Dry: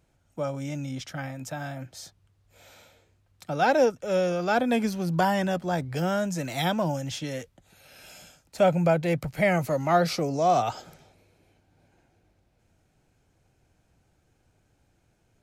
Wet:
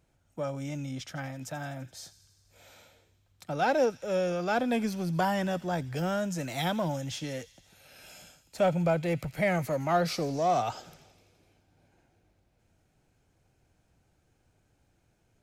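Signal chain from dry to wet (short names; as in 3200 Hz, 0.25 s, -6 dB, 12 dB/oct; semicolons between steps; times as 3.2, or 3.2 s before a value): in parallel at -7.5 dB: soft clip -27.5 dBFS, distortion -7 dB; on the sum: thin delay 84 ms, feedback 73%, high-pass 2900 Hz, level -15.5 dB; gain -5.5 dB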